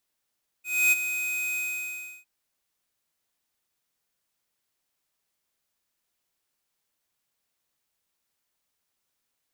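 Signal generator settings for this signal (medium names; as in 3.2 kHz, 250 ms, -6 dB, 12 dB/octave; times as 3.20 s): ADSR square 2.51 kHz, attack 280 ms, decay 25 ms, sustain -10.5 dB, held 0.93 s, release 676 ms -19 dBFS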